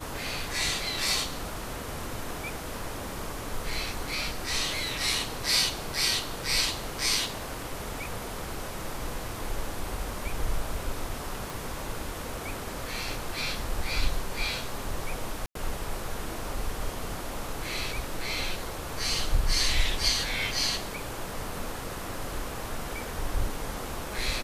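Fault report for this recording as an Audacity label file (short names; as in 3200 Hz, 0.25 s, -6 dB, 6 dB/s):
11.500000	11.500000	pop
15.460000	15.550000	gap 93 ms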